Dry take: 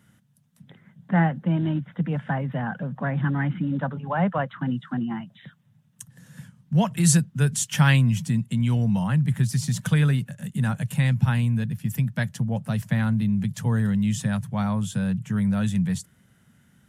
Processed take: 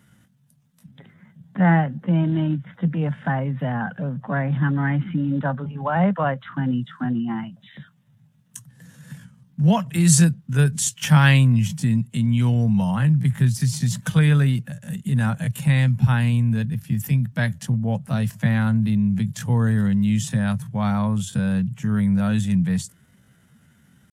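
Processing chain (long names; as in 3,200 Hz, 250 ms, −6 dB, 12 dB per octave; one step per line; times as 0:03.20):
tempo change 0.7×
level +3 dB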